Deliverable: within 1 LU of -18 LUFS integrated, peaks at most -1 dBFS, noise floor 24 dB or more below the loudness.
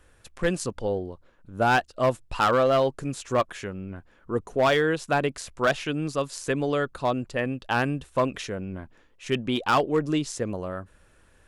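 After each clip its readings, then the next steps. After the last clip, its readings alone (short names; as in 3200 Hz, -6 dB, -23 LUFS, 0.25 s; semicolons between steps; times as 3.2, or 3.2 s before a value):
clipped 0.9%; flat tops at -15.0 dBFS; loudness -26.0 LUFS; peak -15.0 dBFS; loudness target -18.0 LUFS
-> clip repair -15 dBFS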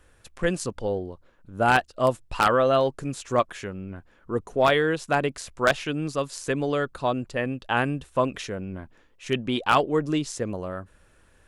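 clipped 0.0%; loudness -25.5 LUFS; peak -6.0 dBFS; loudness target -18.0 LUFS
-> gain +7.5 dB; limiter -1 dBFS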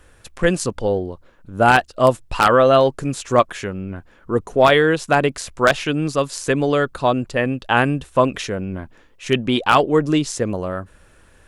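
loudness -18.5 LUFS; peak -1.0 dBFS; noise floor -52 dBFS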